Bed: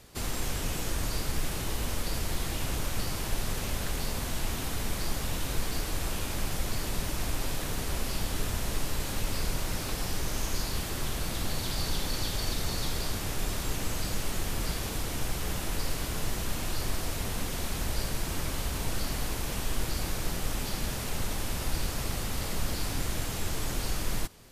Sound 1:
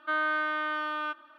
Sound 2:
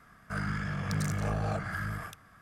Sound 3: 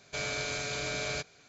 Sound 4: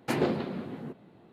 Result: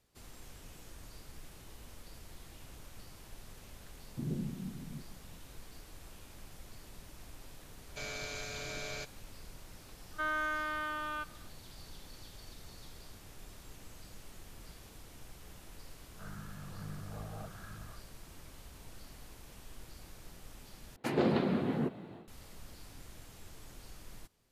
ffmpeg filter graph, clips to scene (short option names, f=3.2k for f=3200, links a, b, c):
-filter_complex "[4:a]asplit=2[a][b];[0:a]volume=-20dB[c];[a]lowpass=f=170:t=q:w=1.7[d];[2:a]lowpass=f=1.5k:w=0.5412,lowpass=f=1.5k:w=1.3066[e];[b]dynaudnorm=f=200:g=3:m=15.5dB[f];[c]asplit=2[g][h];[g]atrim=end=20.964[i];[f]atrim=end=1.32,asetpts=PTS-STARTPTS,volume=-8dB[j];[h]atrim=start=22.276[k];[d]atrim=end=1.32,asetpts=PTS-STARTPTS,volume=-6dB,afade=t=in:d=0.004:c=hsin,afade=t=out:st=1.316:d=0.004:c=hsin,adelay=180369S[l];[3:a]atrim=end=1.48,asetpts=PTS-STARTPTS,volume=-7.5dB,afade=t=in:d=0.004:c=hsin,afade=t=out:st=1.476:d=0.004:c=hsin,adelay=7830[m];[1:a]atrim=end=1.38,asetpts=PTS-STARTPTS,volume=-6dB,afade=t=in:d=0.004:c=hsin,afade=t=out:st=1.376:d=0.004:c=hsin,adelay=10110[n];[e]atrim=end=2.41,asetpts=PTS-STARTPTS,volume=-13.5dB,afade=t=in:d=0.004:c=hsin,afade=t=out:st=2.406:d=0.004:c=hsin,adelay=15890[o];[i][j]acrossfade=d=0.004:c1=hsin:c2=hsin[p];[p][k]acrossfade=d=0.004:c1=hsin:c2=hsin[q];[q][l][m][n][o]amix=inputs=5:normalize=0"